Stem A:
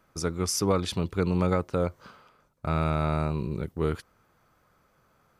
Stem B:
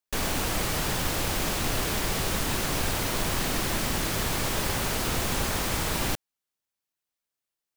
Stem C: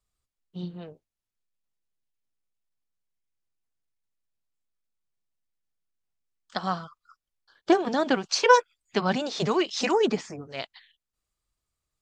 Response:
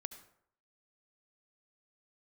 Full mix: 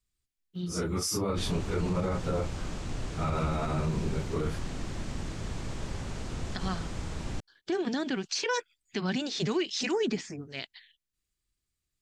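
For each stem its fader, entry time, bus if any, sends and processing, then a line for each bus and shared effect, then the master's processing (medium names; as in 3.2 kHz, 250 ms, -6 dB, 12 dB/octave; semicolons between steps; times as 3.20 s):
-1.0 dB, 0.55 s, no send, phase randomisation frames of 100 ms
-15.0 dB, 1.25 s, no send, Chebyshev low-pass 7.6 kHz, order 3; bass shelf 340 Hz +12 dB
0.0 dB, 0.00 s, no send, high-order bell 800 Hz -9.5 dB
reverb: none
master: peak limiter -21 dBFS, peak gain reduction 12.5 dB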